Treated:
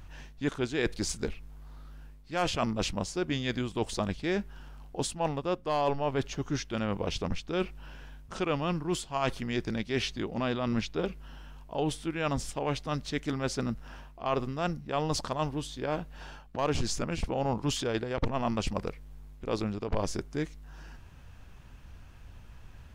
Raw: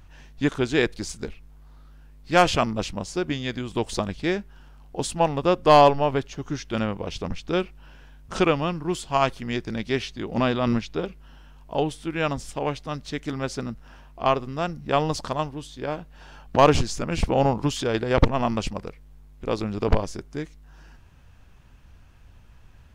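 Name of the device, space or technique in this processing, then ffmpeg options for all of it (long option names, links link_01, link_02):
compression on the reversed sound: -af "areverse,acompressor=threshold=-28dB:ratio=6,areverse,volume=1.5dB"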